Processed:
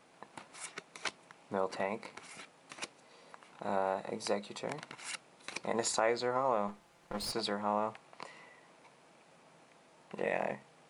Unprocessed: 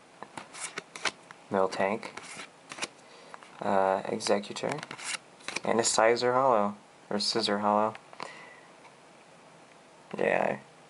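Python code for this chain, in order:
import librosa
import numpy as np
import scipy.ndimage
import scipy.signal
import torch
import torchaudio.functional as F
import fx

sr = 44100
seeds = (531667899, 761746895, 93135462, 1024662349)

y = fx.lower_of_two(x, sr, delay_ms=5.8, at=(6.67, 7.31), fade=0.02)
y = y * 10.0 ** (-7.5 / 20.0)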